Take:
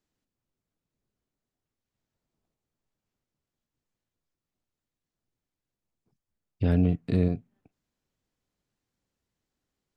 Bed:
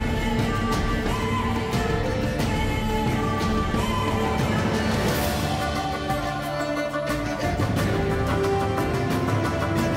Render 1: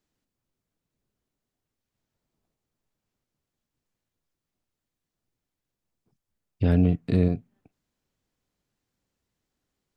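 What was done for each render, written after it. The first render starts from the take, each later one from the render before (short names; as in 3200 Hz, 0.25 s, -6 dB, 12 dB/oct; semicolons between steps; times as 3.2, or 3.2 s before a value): gain +2.5 dB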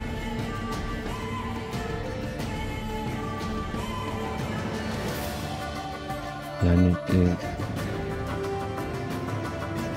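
add bed -7.5 dB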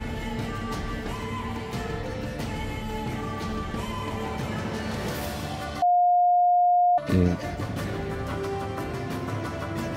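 5.82–6.98 bleep 711 Hz -16.5 dBFS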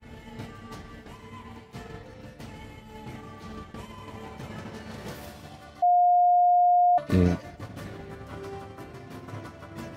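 HPF 43 Hz; expander -22 dBFS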